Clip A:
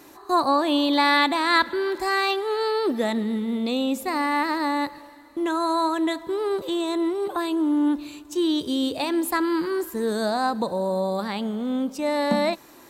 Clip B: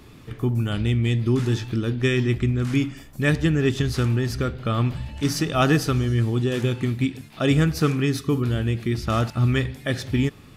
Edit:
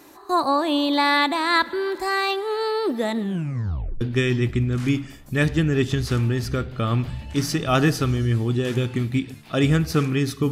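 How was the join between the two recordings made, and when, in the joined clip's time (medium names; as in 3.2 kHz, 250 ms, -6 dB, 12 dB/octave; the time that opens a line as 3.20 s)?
clip A
3.20 s: tape stop 0.81 s
4.01 s: go over to clip B from 1.88 s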